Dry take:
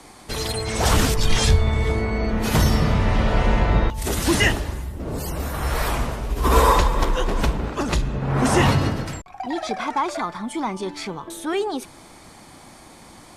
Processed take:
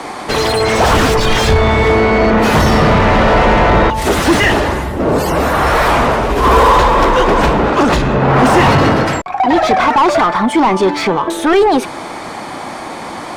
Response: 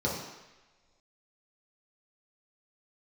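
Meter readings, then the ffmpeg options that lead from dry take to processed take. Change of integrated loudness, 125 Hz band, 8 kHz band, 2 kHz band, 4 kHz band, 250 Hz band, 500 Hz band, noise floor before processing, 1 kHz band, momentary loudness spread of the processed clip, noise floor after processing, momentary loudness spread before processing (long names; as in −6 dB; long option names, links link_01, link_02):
+10.5 dB, +5.5 dB, +3.5 dB, +12.0 dB, +8.0 dB, +11.0 dB, +13.5 dB, −46 dBFS, +13.5 dB, 8 LU, −26 dBFS, 12 LU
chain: -filter_complex "[0:a]acontrast=82,asplit=2[link_01][link_02];[link_02]highpass=frequency=720:poles=1,volume=25dB,asoftclip=type=tanh:threshold=-1.5dB[link_03];[link_01][link_03]amix=inputs=2:normalize=0,lowpass=frequency=1100:poles=1,volume=-6dB,volume=1dB"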